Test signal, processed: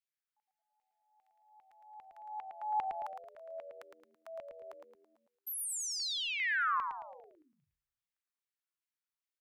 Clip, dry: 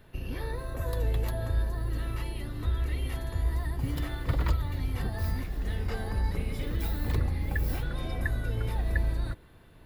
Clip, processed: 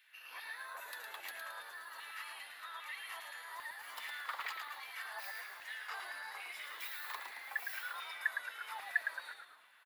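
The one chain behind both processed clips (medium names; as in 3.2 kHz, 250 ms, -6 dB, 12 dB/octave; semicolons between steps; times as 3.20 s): high-pass 680 Hz 12 dB/octave; LFO high-pass saw down 2.5 Hz 920–2400 Hz; frequency-shifting echo 110 ms, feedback 44%, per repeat -86 Hz, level -5.5 dB; trim -5 dB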